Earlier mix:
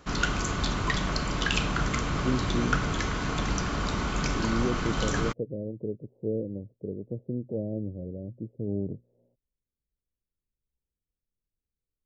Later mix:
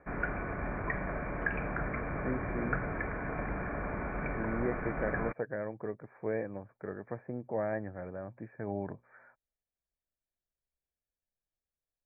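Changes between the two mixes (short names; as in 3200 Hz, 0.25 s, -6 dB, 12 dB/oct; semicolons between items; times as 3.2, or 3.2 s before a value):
speech: remove steep low-pass 560 Hz 48 dB/oct; master: add rippled Chebyshev low-pass 2400 Hz, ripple 9 dB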